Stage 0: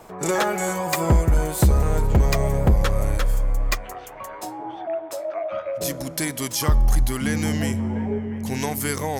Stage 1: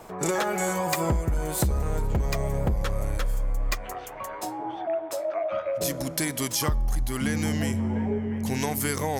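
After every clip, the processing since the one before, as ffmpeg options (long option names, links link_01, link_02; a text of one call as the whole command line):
ffmpeg -i in.wav -af "acompressor=threshold=-22dB:ratio=6" out.wav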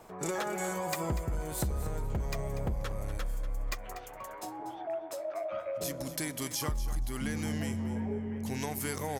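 ffmpeg -i in.wav -af "aecho=1:1:241|482:0.224|0.0358,volume=-8dB" out.wav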